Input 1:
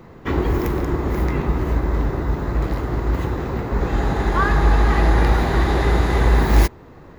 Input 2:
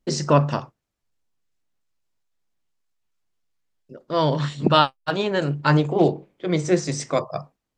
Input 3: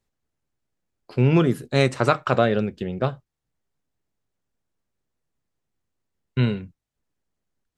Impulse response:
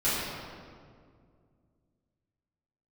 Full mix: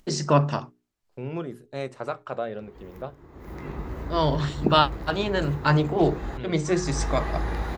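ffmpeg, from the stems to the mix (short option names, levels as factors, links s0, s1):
-filter_complex "[0:a]adelay=2300,volume=0.251[s0];[1:a]bandreject=f=520:w=12,volume=0.794[s1];[2:a]agate=range=0.0562:threshold=0.0112:ratio=16:detection=peak,equalizer=f=650:t=o:w=2:g=8,volume=0.133,asplit=2[s2][s3];[s3]apad=whole_len=418448[s4];[s0][s4]sidechaincompress=threshold=0.00251:ratio=8:attack=25:release=390[s5];[s5][s1][s2]amix=inputs=3:normalize=0,bandreject=f=60:t=h:w=6,bandreject=f=120:t=h:w=6,bandreject=f=180:t=h:w=6,bandreject=f=240:t=h:w=6,bandreject=f=300:t=h:w=6,bandreject=f=360:t=h:w=6,bandreject=f=420:t=h:w=6,acompressor=mode=upward:threshold=0.00447:ratio=2.5"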